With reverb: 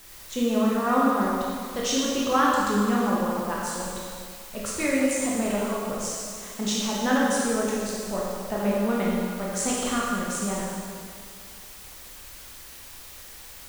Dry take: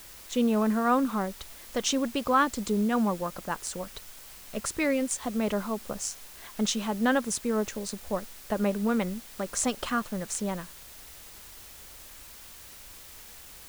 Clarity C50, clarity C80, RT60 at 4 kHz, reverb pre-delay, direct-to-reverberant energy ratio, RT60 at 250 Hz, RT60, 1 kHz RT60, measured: −2.0 dB, 0.0 dB, 2.0 s, 16 ms, −5.5 dB, 1.9 s, 2.1 s, 2.1 s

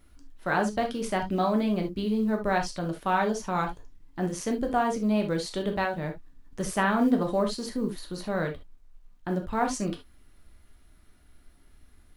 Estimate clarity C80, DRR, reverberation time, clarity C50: 29.0 dB, 3.0 dB, non-exponential decay, 10.0 dB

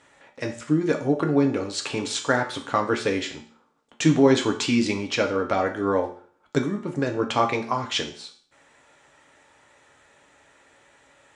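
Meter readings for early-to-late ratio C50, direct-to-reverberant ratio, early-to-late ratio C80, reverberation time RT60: 10.5 dB, 2.0 dB, 14.0 dB, 0.45 s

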